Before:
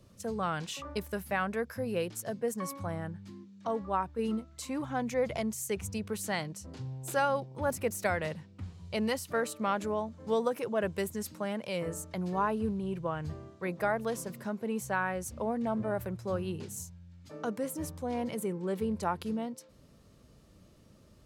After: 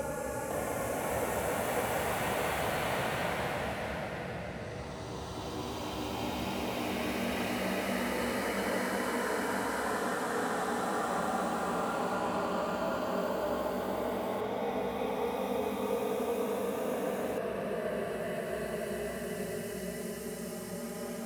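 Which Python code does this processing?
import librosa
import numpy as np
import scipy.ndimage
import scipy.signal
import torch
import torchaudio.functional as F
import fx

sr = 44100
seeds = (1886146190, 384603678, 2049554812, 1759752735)

y = x * np.sin(2.0 * np.pi * 23.0 * np.arange(len(x)) / sr)
y = fx.paulstretch(y, sr, seeds[0], factor=5.7, window_s=1.0, from_s=7.63)
y = fx.echo_pitch(y, sr, ms=507, semitones=4, count=3, db_per_echo=-3.0)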